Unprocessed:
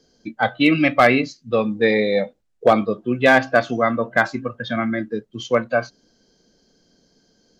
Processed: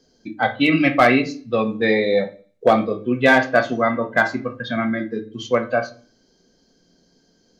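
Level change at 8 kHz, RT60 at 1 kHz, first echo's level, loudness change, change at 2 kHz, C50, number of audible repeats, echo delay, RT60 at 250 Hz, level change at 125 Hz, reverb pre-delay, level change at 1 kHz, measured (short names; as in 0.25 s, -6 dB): n/a, 0.40 s, none, 0.0 dB, +0.5 dB, 14.5 dB, none, none, 0.50 s, -0.5 dB, 3 ms, 0.0 dB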